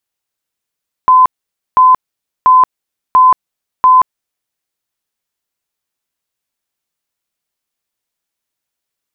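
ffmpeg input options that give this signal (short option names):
-f lavfi -i "aevalsrc='0.708*sin(2*PI*1020*mod(t,0.69))*lt(mod(t,0.69),181/1020)':d=3.45:s=44100"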